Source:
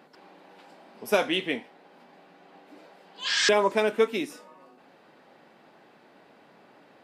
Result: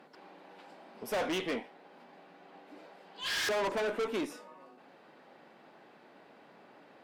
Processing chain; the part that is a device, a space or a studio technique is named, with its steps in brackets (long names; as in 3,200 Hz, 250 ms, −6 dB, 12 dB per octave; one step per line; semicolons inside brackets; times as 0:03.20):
dynamic equaliser 660 Hz, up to +6 dB, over −37 dBFS, Q 0.7
tube preamp driven hard (tube saturation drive 29 dB, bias 0.35; low-shelf EQ 110 Hz −7 dB; high-shelf EQ 4,700 Hz −5 dB)